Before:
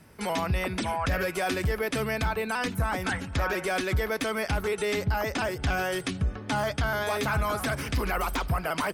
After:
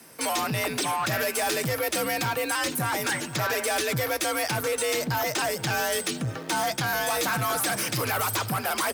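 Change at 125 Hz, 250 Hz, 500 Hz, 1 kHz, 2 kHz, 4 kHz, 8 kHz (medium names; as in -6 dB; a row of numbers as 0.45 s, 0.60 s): -2.5 dB, -1.0 dB, +1.0 dB, +2.5 dB, +2.0 dB, +6.0 dB, +11.5 dB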